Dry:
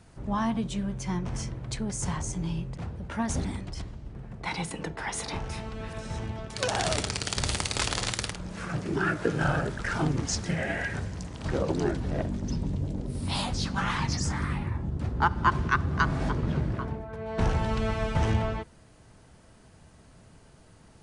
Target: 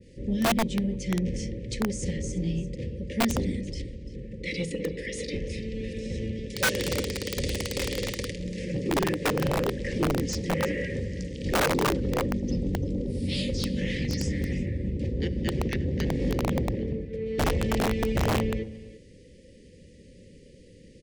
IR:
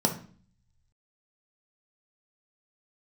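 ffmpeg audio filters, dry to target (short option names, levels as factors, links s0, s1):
-filter_complex "[0:a]asuperstop=centerf=980:order=20:qfactor=0.77,equalizer=f=570:t=o:w=0.47:g=14,asoftclip=type=tanh:threshold=0.106,lowpass=7400,aecho=1:1:341:0.141,asplit=2[s0][s1];[1:a]atrim=start_sample=2205,lowpass=5400[s2];[s1][s2]afir=irnorm=-1:irlink=0,volume=0.0562[s3];[s0][s3]amix=inputs=2:normalize=0,aeval=exprs='(mod(10.6*val(0)+1,2)-1)/10.6':c=same,adynamicequalizer=threshold=0.00501:dfrequency=2200:dqfactor=0.7:tfrequency=2200:tqfactor=0.7:attack=5:release=100:ratio=0.375:range=2:mode=cutabove:tftype=highshelf,volume=1.26"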